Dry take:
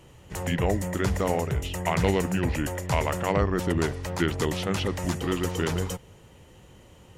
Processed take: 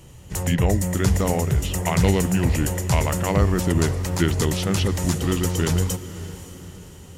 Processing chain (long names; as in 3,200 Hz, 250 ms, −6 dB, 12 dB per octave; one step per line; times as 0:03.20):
bass and treble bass +7 dB, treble +9 dB
feedback delay with all-pass diffusion 555 ms, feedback 47%, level −14.5 dB
level +1 dB